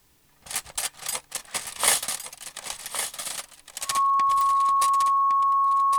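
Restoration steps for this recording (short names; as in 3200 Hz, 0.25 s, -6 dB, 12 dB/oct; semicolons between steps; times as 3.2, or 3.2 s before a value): de-click; notch 1100 Hz, Q 30; inverse comb 1.111 s -8.5 dB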